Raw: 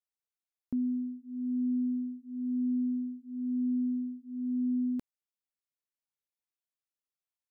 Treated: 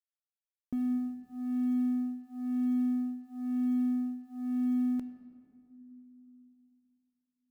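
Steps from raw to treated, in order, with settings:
mu-law and A-law mismatch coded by A
on a send: convolution reverb RT60 2.6 s, pre-delay 7 ms, DRR 10 dB

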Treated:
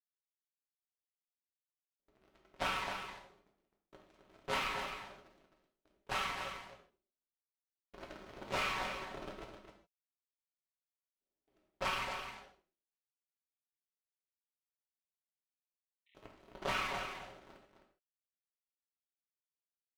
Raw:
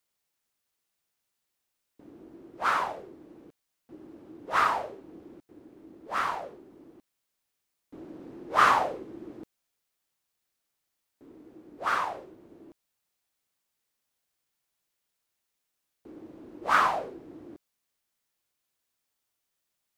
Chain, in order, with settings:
lower of the sound and its delayed copy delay 5.3 ms
noise gate with hold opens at −43 dBFS
parametric band 3,200 Hz +9 dB 1.5 octaves
leveller curve on the samples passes 3
downward compressor 16 to 1, threshold −28 dBFS, peak gain reduction 18.5 dB
harmonic generator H 7 −19 dB, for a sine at −16.5 dBFS
0:12.57–0:16.15: linear-phase brick-wall band-pass 1,800–4,100 Hz
single-tap delay 261 ms −8 dB
reverb whose tail is shaped and stops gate 180 ms falling, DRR 0 dB
level −6.5 dB

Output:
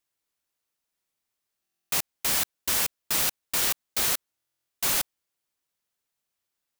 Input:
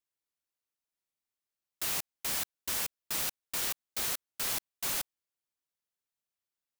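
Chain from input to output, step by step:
buffer that repeats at 0:01.62/0:04.37, samples 1,024, times 12
level +8 dB

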